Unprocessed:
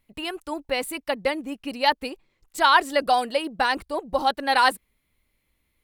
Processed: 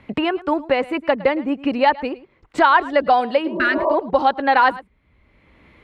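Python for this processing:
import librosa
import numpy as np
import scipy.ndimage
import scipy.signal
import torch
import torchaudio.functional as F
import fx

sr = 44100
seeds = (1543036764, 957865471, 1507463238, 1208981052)

y = scipy.signal.sosfilt(scipy.signal.butter(2, 43.0, 'highpass', fs=sr, output='sos'), x)
y = fx.spec_repair(y, sr, seeds[0], start_s=3.51, length_s=0.4, low_hz=340.0, high_hz=1200.0, source='both')
y = scipy.signal.sosfilt(scipy.signal.butter(2, 2000.0, 'lowpass', fs=sr, output='sos'), y)
y = y + 10.0 ** (-20.5 / 20.0) * np.pad(y, (int(108 * sr / 1000.0), 0))[:len(y)]
y = fx.band_squash(y, sr, depth_pct=70)
y = y * librosa.db_to_amplitude(6.5)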